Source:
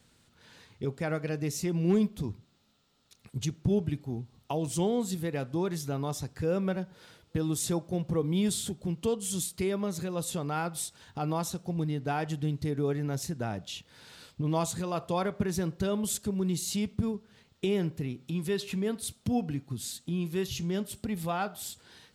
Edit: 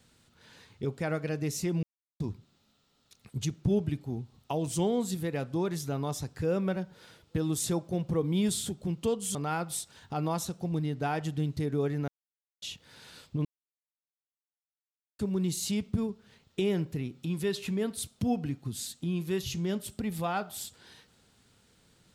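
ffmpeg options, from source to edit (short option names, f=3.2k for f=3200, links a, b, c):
-filter_complex "[0:a]asplit=8[a][b][c][d][e][f][g][h];[a]atrim=end=1.83,asetpts=PTS-STARTPTS,afade=t=out:st=1.826:d=0.004:c=hsin[i];[b]atrim=start=1.83:end=2.2,asetpts=PTS-STARTPTS,volume=0[j];[c]atrim=start=2.2:end=9.352,asetpts=PTS-STARTPTS,afade=t=in:d=0.004:c=hsin[k];[d]atrim=start=10.398:end=13.13,asetpts=PTS-STARTPTS,afade=t=out:st=2.728:d=0.004:c=hsin[l];[e]atrim=start=13.13:end=13.67,asetpts=PTS-STARTPTS,volume=0[m];[f]atrim=start=13.67:end=14.5,asetpts=PTS-STARTPTS,afade=t=in:d=0.004:c=hsin,afade=t=out:st=0.826:d=0.004:c=hsin[n];[g]atrim=start=14.5:end=16.24,asetpts=PTS-STARTPTS,volume=0[o];[h]atrim=start=16.24,asetpts=PTS-STARTPTS,afade=t=in:d=0.004:c=hsin[p];[i][j][k]concat=n=3:v=0:a=1[q];[l][m][n][o][p]concat=n=5:v=0:a=1[r];[q][r]acrossfade=d=0.004:c1=hsin:c2=hsin"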